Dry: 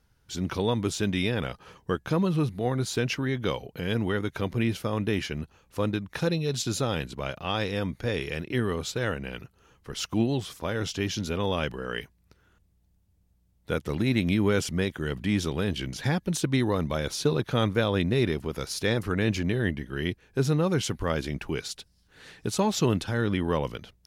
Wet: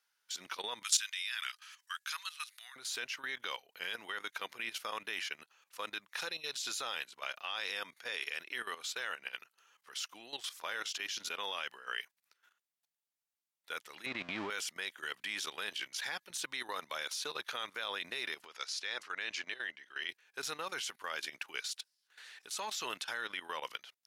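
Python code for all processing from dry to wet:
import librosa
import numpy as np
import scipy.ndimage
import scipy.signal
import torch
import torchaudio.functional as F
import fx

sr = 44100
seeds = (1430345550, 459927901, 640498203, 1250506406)

y = fx.chain(x, sr, fx.highpass(hz=1300.0, slope=24),
    fx.peak_eq(hz=8200.0, db=7.0, octaves=2.3), at=(0.83, 2.76))
y = fx.chain(y, sr, fx.zero_step(step_db=-28.0),
    fx.lowpass(hz=4600.0, slope=12),
    fx.tilt_eq(slope=-3.5), at=(14.06, 14.5))
y = fx.chain(y, sr, fx.cheby1_lowpass(hz=5900.0, order=2),
    fx.low_shelf(hz=210.0, db=-8.0), at=(18.45, 20.09))
y = scipy.signal.sosfilt(scipy.signal.butter(2, 1300.0, 'highpass', fs=sr, output='sos'), y)
y = fx.level_steps(y, sr, step_db=14)
y = y * librosa.db_to_amplitude(3.0)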